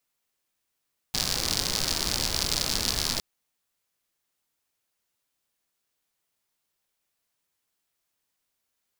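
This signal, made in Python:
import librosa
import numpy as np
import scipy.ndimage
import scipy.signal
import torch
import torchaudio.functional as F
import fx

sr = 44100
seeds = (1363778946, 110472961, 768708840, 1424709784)

y = fx.rain(sr, seeds[0], length_s=2.06, drops_per_s=97.0, hz=4700.0, bed_db=-3.0)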